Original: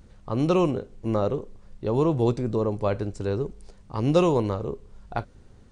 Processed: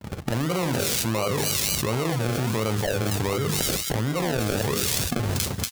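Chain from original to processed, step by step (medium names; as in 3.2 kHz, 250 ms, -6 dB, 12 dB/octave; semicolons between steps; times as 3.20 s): hum notches 50/100/150/200/250/300/350/400/450/500 Hz; gate -48 dBFS, range -58 dB; high-pass 83 Hz 24 dB/octave; comb 1.4 ms, depth 34%; decimation with a swept rate 36×, swing 60% 1.4 Hz; feedback echo behind a high-pass 237 ms, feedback 32%, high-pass 4.5 kHz, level -6 dB; level flattener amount 100%; trim -9.5 dB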